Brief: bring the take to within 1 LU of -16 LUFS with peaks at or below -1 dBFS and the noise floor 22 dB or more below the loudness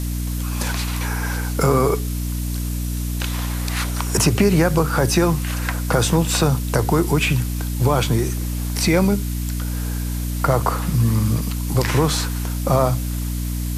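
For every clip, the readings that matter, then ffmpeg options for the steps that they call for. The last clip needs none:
hum 60 Hz; highest harmonic 300 Hz; hum level -21 dBFS; noise floor -24 dBFS; noise floor target -43 dBFS; loudness -20.5 LUFS; peak level -4.0 dBFS; loudness target -16.0 LUFS
-> -af "bandreject=f=60:t=h:w=4,bandreject=f=120:t=h:w=4,bandreject=f=180:t=h:w=4,bandreject=f=240:t=h:w=4,bandreject=f=300:t=h:w=4"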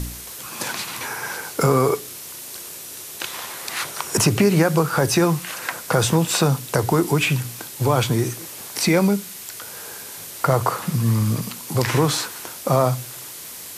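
hum not found; noise floor -36 dBFS; noise floor target -43 dBFS
-> -af "afftdn=nr=7:nf=-36"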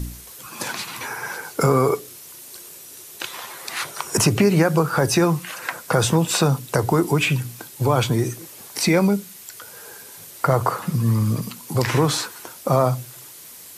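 noise floor -42 dBFS; noise floor target -44 dBFS
-> -af "afftdn=nr=6:nf=-42"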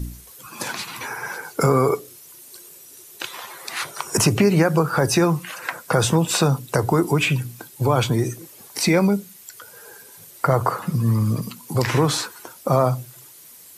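noise floor -45 dBFS; loudness -21.5 LUFS; peak level -5.0 dBFS; loudness target -16.0 LUFS
-> -af "volume=1.88,alimiter=limit=0.891:level=0:latency=1"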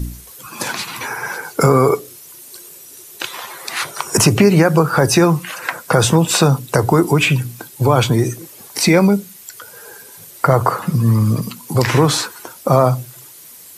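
loudness -16.0 LUFS; peak level -1.0 dBFS; noise floor -40 dBFS

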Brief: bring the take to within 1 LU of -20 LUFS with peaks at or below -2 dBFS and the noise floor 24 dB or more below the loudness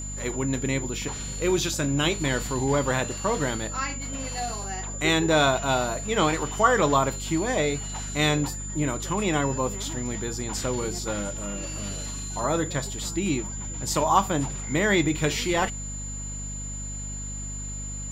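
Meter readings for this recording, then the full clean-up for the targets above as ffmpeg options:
hum 50 Hz; highest harmonic 250 Hz; hum level -34 dBFS; steady tone 7.1 kHz; tone level -35 dBFS; loudness -26.0 LUFS; peak level -6.0 dBFS; loudness target -20.0 LUFS
-> -af "bandreject=f=50:t=h:w=6,bandreject=f=100:t=h:w=6,bandreject=f=150:t=h:w=6,bandreject=f=200:t=h:w=6,bandreject=f=250:t=h:w=6"
-af "bandreject=f=7100:w=30"
-af "volume=2,alimiter=limit=0.794:level=0:latency=1"

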